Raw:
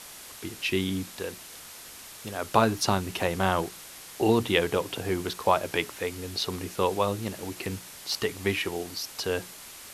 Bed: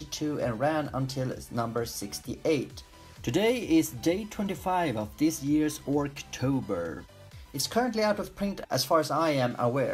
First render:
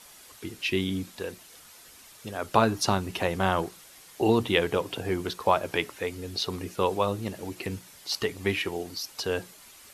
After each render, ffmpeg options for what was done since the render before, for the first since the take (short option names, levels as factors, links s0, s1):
-af "afftdn=nr=8:nf=-45"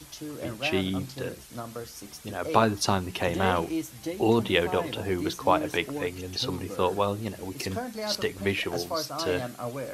-filter_complex "[1:a]volume=0.422[s0];[0:a][s0]amix=inputs=2:normalize=0"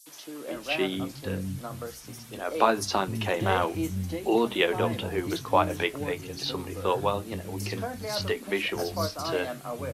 -filter_complex "[0:a]asplit=2[s0][s1];[s1]adelay=21,volume=0.251[s2];[s0][s2]amix=inputs=2:normalize=0,acrossover=split=210|5600[s3][s4][s5];[s4]adelay=60[s6];[s3]adelay=530[s7];[s7][s6][s5]amix=inputs=3:normalize=0"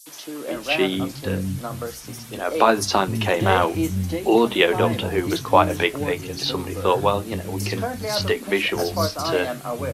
-af "volume=2.24,alimiter=limit=0.891:level=0:latency=1"